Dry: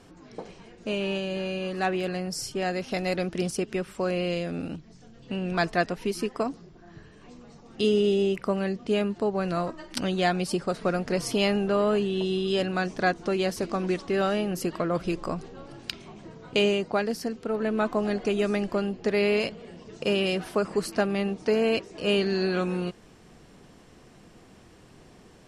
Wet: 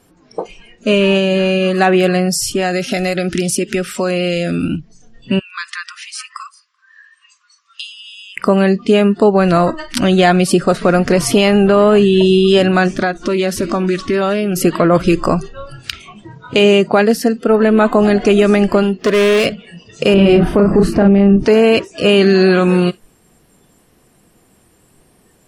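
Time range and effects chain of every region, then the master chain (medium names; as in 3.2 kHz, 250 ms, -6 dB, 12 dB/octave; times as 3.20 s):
2.33–4.64 s: treble shelf 2.8 kHz +5.5 dB + compression 12:1, threshold -28 dBFS
5.39–8.37 s: compression, threshold -33 dBFS + brick-wall FIR band-pass 1–10 kHz + delay 384 ms -21 dB
12.93–14.56 s: compression 8:1, threshold -28 dBFS + loudspeaker Doppler distortion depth 0.12 ms
18.83–19.46 s: bass shelf 150 Hz -6.5 dB + hard clipper -26 dBFS
20.14–21.45 s: tilt EQ -3.5 dB/octave + valve stage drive 11 dB, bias 0.35 + doubling 35 ms -4 dB
whole clip: spectral noise reduction 18 dB; dynamic bell 4.9 kHz, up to -5 dB, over -47 dBFS, Q 1.5; loudness maximiser +18 dB; trim -1 dB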